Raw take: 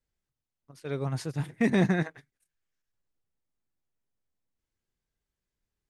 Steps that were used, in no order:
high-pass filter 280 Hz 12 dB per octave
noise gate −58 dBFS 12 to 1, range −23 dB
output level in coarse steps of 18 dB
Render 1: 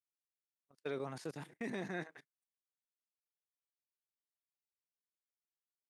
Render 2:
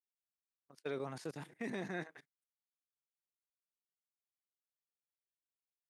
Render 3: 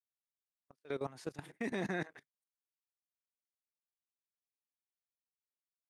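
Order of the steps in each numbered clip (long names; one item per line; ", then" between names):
output level in coarse steps, then high-pass filter, then noise gate
output level in coarse steps, then noise gate, then high-pass filter
high-pass filter, then output level in coarse steps, then noise gate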